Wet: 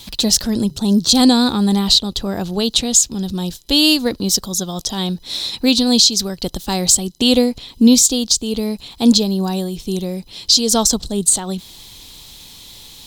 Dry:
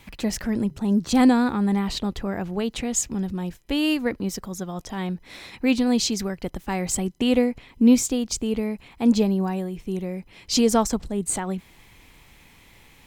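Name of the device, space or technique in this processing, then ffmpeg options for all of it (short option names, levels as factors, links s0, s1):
over-bright horn tweeter: -af "highshelf=f=2900:t=q:w=3:g=10,alimiter=limit=0.422:level=0:latency=1:release=385,volume=2.11"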